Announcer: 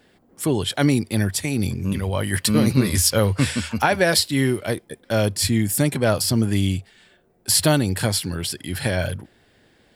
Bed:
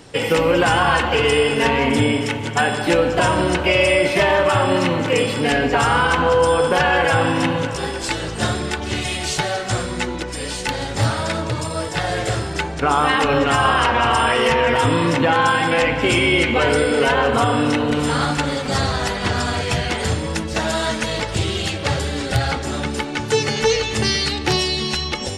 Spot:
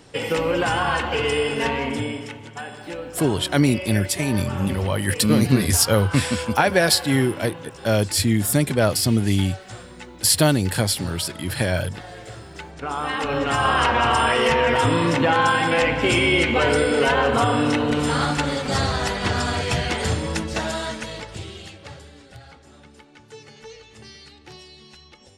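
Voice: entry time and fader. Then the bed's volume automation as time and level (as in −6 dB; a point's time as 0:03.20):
2.75 s, +0.5 dB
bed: 0:01.66 −5.5 dB
0:02.65 −16.5 dB
0:12.34 −16.5 dB
0:13.81 −2 dB
0:20.42 −2 dB
0:22.38 −24.5 dB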